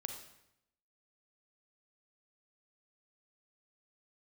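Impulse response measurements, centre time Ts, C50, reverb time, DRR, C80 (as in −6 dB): 24 ms, 6.0 dB, 0.80 s, 4.5 dB, 9.0 dB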